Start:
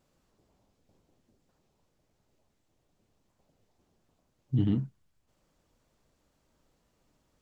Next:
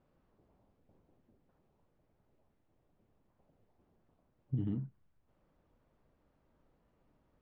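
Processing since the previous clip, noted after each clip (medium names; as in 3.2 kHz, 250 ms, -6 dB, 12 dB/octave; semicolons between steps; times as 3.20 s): Bessel low-pass 1.6 kHz, order 2; compression 12:1, threshold -31 dBFS, peak gain reduction 10.5 dB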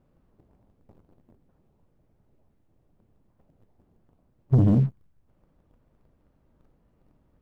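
bass shelf 370 Hz +9 dB; waveshaping leveller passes 2; trim +5.5 dB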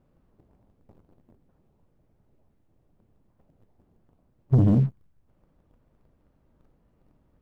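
no audible change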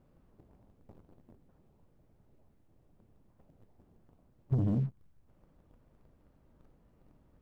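compression 4:1, threshold -29 dBFS, peak gain reduction 11.5 dB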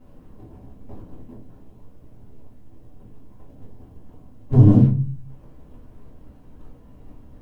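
reverberation RT60 0.35 s, pre-delay 4 ms, DRR -7.5 dB; trim +6 dB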